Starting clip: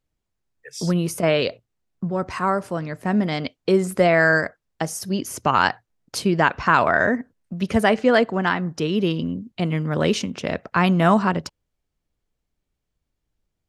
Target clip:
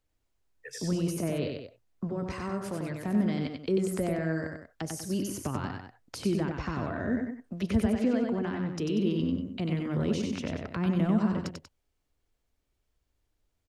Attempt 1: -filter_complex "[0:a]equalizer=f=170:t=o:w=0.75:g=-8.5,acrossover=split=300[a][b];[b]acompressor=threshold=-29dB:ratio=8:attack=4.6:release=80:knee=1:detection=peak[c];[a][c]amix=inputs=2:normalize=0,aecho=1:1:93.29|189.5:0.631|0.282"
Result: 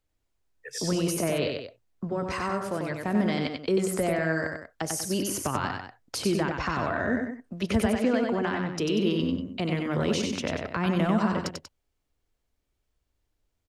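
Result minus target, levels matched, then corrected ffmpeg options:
compressor: peak gain reduction -9 dB
-filter_complex "[0:a]equalizer=f=170:t=o:w=0.75:g=-8.5,acrossover=split=300[a][b];[b]acompressor=threshold=-39.5dB:ratio=8:attack=4.6:release=80:knee=1:detection=peak[c];[a][c]amix=inputs=2:normalize=0,aecho=1:1:93.29|189.5:0.631|0.282"

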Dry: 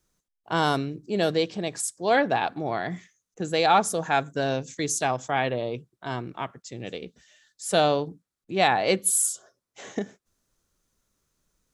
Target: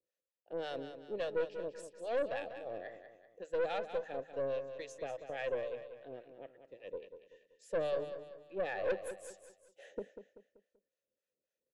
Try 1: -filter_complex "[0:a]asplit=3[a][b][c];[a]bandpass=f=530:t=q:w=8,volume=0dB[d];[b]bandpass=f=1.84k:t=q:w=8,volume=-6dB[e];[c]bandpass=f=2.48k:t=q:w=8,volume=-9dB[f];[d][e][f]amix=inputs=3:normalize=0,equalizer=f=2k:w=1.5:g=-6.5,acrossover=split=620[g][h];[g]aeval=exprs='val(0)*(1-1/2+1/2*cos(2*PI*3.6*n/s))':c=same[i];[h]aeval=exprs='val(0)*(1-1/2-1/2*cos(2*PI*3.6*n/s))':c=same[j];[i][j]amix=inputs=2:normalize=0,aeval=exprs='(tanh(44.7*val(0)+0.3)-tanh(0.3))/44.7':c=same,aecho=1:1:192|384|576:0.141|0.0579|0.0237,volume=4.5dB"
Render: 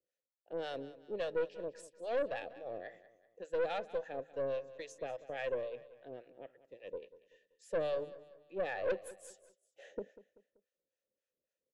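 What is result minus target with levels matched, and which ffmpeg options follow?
echo-to-direct -7 dB
-filter_complex "[0:a]asplit=3[a][b][c];[a]bandpass=f=530:t=q:w=8,volume=0dB[d];[b]bandpass=f=1.84k:t=q:w=8,volume=-6dB[e];[c]bandpass=f=2.48k:t=q:w=8,volume=-9dB[f];[d][e][f]amix=inputs=3:normalize=0,equalizer=f=2k:w=1.5:g=-6.5,acrossover=split=620[g][h];[g]aeval=exprs='val(0)*(1-1/2+1/2*cos(2*PI*3.6*n/s))':c=same[i];[h]aeval=exprs='val(0)*(1-1/2-1/2*cos(2*PI*3.6*n/s))':c=same[j];[i][j]amix=inputs=2:normalize=0,aeval=exprs='(tanh(44.7*val(0)+0.3)-tanh(0.3))/44.7':c=same,aecho=1:1:192|384|576|768:0.316|0.13|0.0532|0.0218,volume=4.5dB"

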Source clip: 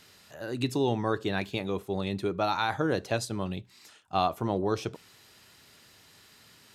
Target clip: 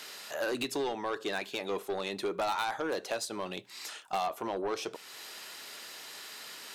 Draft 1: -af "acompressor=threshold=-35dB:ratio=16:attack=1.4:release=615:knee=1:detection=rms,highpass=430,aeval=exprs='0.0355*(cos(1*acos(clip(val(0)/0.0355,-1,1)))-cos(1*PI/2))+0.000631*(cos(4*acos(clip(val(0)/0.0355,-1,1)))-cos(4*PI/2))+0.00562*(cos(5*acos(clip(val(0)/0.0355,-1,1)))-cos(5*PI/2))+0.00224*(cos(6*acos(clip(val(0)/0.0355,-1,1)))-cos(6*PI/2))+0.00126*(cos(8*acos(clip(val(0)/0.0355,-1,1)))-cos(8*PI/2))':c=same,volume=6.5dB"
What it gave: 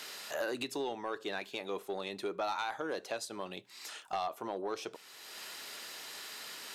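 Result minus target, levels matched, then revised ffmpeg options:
compressor: peak gain reduction +5.5 dB
-af "acompressor=threshold=-29dB:ratio=16:attack=1.4:release=615:knee=1:detection=rms,highpass=430,aeval=exprs='0.0355*(cos(1*acos(clip(val(0)/0.0355,-1,1)))-cos(1*PI/2))+0.000631*(cos(4*acos(clip(val(0)/0.0355,-1,1)))-cos(4*PI/2))+0.00562*(cos(5*acos(clip(val(0)/0.0355,-1,1)))-cos(5*PI/2))+0.00224*(cos(6*acos(clip(val(0)/0.0355,-1,1)))-cos(6*PI/2))+0.00126*(cos(8*acos(clip(val(0)/0.0355,-1,1)))-cos(8*PI/2))':c=same,volume=6.5dB"

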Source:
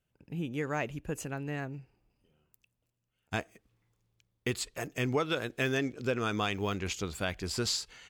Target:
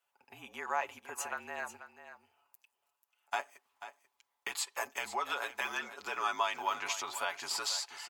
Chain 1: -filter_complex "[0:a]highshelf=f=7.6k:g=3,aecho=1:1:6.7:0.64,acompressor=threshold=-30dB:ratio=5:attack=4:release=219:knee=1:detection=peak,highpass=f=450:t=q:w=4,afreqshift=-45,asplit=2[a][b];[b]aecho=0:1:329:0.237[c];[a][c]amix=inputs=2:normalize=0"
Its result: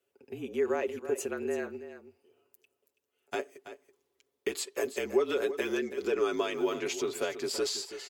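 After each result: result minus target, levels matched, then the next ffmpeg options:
500 Hz band +11.0 dB; echo 0.16 s early
-filter_complex "[0:a]highshelf=f=7.6k:g=3,aecho=1:1:6.7:0.64,acompressor=threshold=-30dB:ratio=5:attack=4:release=219:knee=1:detection=peak,highpass=f=930:t=q:w=4,afreqshift=-45,asplit=2[a][b];[b]aecho=0:1:329:0.237[c];[a][c]amix=inputs=2:normalize=0"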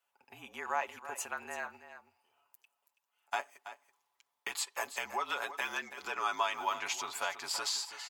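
echo 0.16 s early
-filter_complex "[0:a]highshelf=f=7.6k:g=3,aecho=1:1:6.7:0.64,acompressor=threshold=-30dB:ratio=5:attack=4:release=219:knee=1:detection=peak,highpass=f=930:t=q:w=4,afreqshift=-45,asplit=2[a][b];[b]aecho=0:1:489:0.237[c];[a][c]amix=inputs=2:normalize=0"

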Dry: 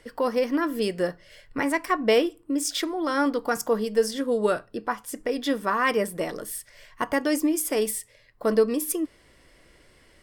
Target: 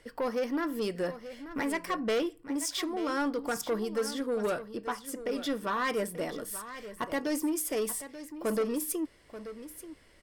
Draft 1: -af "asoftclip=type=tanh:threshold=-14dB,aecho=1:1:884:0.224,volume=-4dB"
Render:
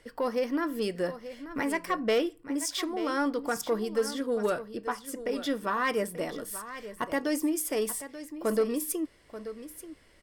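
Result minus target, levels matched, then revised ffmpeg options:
soft clip: distortion -8 dB
-af "asoftclip=type=tanh:threshold=-20.5dB,aecho=1:1:884:0.224,volume=-4dB"

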